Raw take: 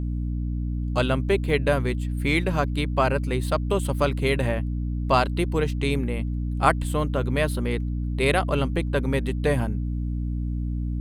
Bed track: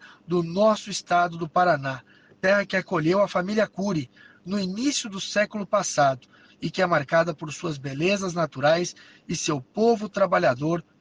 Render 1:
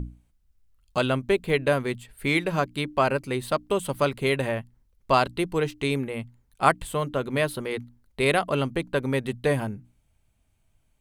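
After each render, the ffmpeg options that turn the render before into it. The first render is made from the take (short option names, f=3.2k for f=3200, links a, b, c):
-af "bandreject=f=60:t=h:w=6,bandreject=f=120:t=h:w=6,bandreject=f=180:t=h:w=6,bandreject=f=240:t=h:w=6,bandreject=f=300:t=h:w=6"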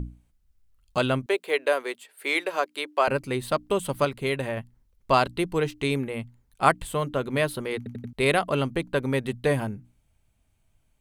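-filter_complex "[0:a]asettb=1/sr,asplit=3[a][b][c];[a]atrim=end=1.264[d];[b]atrim=start=1.26:end=3.08,asetpts=PTS-STARTPTS,afade=t=in:d=0.004:c=qsin,afade=t=out:st=1.816:d=0.004:c=qsin,highpass=f=390:w=0.5412,highpass=f=390:w=1.3066[e];[c]atrim=start=3.076[f];[d][e]acrossfade=d=0.004:c1=hsin:c2=qsin[g];[g][f]acrossfade=d=0.004:c1=qsin:c2=hsin,asplit=7[h][i][j][k][l][m][n];[h]atrim=end=4.052[o];[i]atrim=start=4.048:end=4.572,asetpts=PTS-STARTPTS,volume=-3dB[p];[j]atrim=start=4.568:end=7.862[q];[k]atrim=start=7.768:end=7.862[r];[l]atrim=start=7.768:end=7.862[s];[m]atrim=start=7.768:end=7.862[t];[n]atrim=start=8.128[u];[o][p]acrossfade=d=0.004:c1=hsin:c2=hsin[v];[v][q]acrossfade=d=0.004:c1=hsin:c2=hsin[w];[w][r]acrossfade=d=0.004:c1=hsin:c2=hsin[x];[x][s]acrossfade=d=0.004:c1=hsin:c2=hsin[y];[y][t]acrossfade=d=0.004:c1=hsin:c2=hsin[z];[z][u]acrossfade=d=0.004:c1=hsin:c2=hsin"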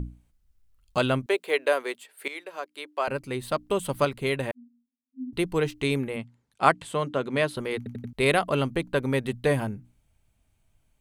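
-filter_complex "[0:a]asettb=1/sr,asplit=3[a][b][c];[a]atrim=end=4.514[d];[b]atrim=start=4.51:end=5.33,asetpts=PTS-STARTPTS,afade=t=in:d=0.004:c=qsin,afade=t=out:st=0.816:d=0.004:c=qsin,asuperpass=centerf=250:order=20:qfactor=7.8[e];[c]atrim=start=5.326[f];[d][e]acrossfade=d=0.004:c1=hsin:c2=qsin[g];[g][f]acrossfade=d=0.004:c1=qsin:c2=hsin,asettb=1/sr,asplit=3[h][i][j];[h]atrim=end=6.164[k];[i]atrim=start=6.16:end=7.57,asetpts=PTS-STARTPTS,afade=t=in:d=0.004:c=qsin,afade=t=out:st=1.406:d=0.004:c=qsin,highpass=140,lowpass=8k[l];[j]atrim=start=7.566[m];[k][l]acrossfade=d=0.004:c1=hsin:c2=qsin[n];[n][m]acrossfade=d=0.004:c1=qsin:c2=hsin,asplit=2[o][p];[o]atrim=end=2.28,asetpts=PTS-STARTPTS,afade=t=out:st=2.276:d=0.004:c=hsin:silence=0.177828[q];[p]atrim=start=2.28,asetpts=PTS-STARTPTS,afade=t=in:d=1.73:silence=0.177828[r];[q][r]concat=n=2:v=0:a=1"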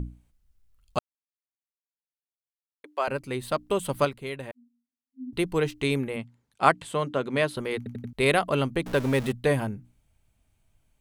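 -filter_complex "[0:a]asettb=1/sr,asplit=3[a][b][c];[a]atrim=end=8.864[d];[b]atrim=start=8.86:end=9.32,asetpts=PTS-STARTPTS,afade=t=in:d=0.004:c=qsin,afade=t=out:st=0.456:d=0.004:c=qsin,aeval=exprs='val(0)+0.5*0.0266*sgn(val(0))':c=same[e];[c]atrim=start=9.316[f];[d][e]acrossfade=d=0.004:c1=hsin:c2=qsin[g];[g][f]acrossfade=d=0.004:c1=qsin:c2=hsin,asplit=5[h][i][j][k][l];[h]atrim=end=0.99,asetpts=PTS-STARTPTS,afade=t=out:st=0.986:d=0.004:c=hsin[m];[i]atrim=start=0.99:end=2.84,asetpts=PTS-STARTPTS,volume=0[n];[j]atrim=start=2.84:end=4.24,asetpts=PTS-STARTPTS,afade=t=in:d=0.004:c=hsin,afade=t=out:st=1.21:d=0.19:c=qua:silence=0.398107[o];[k]atrim=start=4.24:end=5.1,asetpts=PTS-STARTPTS,volume=-8dB[p];[l]atrim=start=5.1,asetpts=PTS-STARTPTS,afade=t=in:d=0.19:c=qua:silence=0.398107[q];[m][n][o][p][q]concat=n=5:v=0:a=1"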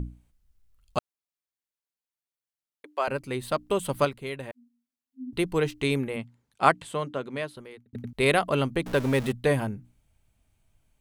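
-filter_complex "[0:a]asplit=2[a][b];[a]atrim=end=7.93,asetpts=PTS-STARTPTS,afade=t=out:st=6.65:d=1.28[c];[b]atrim=start=7.93,asetpts=PTS-STARTPTS,afade=t=in:d=0.004:c=hsin[d];[c][d]concat=n=2:v=0:a=1"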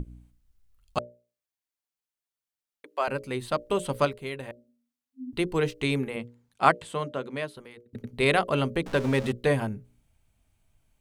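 -filter_complex "[0:a]acrossover=split=9500[a][b];[b]acompressor=threshold=-57dB:ratio=4:attack=1:release=60[c];[a][c]amix=inputs=2:normalize=0,bandreject=f=60:t=h:w=6,bandreject=f=120:t=h:w=6,bandreject=f=180:t=h:w=6,bandreject=f=240:t=h:w=6,bandreject=f=300:t=h:w=6,bandreject=f=360:t=h:w=6,bandreject=f=420:t=h:w=6,bandreject=f=480:t=h:w=6,bandreject=f=540:t=h:w=6,bandreject=f=600:t=h:w=6"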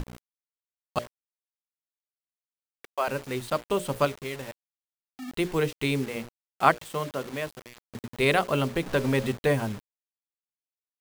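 -af "acrusher=bits=6:mix=0:aa=0.000001"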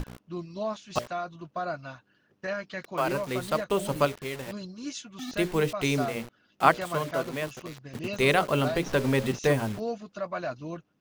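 -filter_complex "[1:a]volume=-12.5dB[a];[0:a][a]amix=inputs=2:normalize=0"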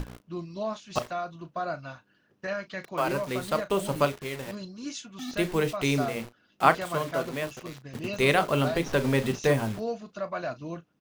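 -filter_complex "[0:a]asplit=2[a][b];[b]adelay=36,volume=-13.5dB[c];[a][c]amix=inputs=2:normalize=0"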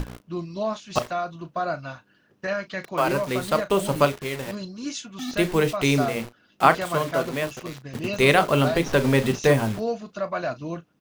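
-af "volume=5dB,alimiter=limit=-2dB:level=0:latency=1"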